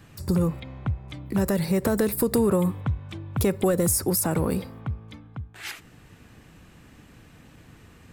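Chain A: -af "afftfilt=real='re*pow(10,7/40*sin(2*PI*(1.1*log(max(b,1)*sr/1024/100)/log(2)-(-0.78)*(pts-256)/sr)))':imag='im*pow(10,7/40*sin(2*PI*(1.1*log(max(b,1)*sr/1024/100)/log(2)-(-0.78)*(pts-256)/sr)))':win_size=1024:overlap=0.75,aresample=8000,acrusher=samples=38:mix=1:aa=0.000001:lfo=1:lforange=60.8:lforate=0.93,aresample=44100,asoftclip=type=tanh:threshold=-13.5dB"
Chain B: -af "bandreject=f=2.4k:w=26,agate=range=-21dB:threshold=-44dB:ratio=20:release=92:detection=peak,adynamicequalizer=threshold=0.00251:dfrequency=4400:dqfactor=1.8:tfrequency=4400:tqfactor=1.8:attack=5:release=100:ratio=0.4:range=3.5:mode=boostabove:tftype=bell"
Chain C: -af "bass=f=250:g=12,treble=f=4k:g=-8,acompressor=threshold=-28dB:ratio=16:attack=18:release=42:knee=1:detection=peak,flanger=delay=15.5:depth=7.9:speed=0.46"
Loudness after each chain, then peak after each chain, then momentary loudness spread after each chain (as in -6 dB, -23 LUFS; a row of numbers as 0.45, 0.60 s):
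-29.0, -25.0, -33.0 LUFS; -14.5, -11.5, -18.0 dBFS; 16, 14, 14 LU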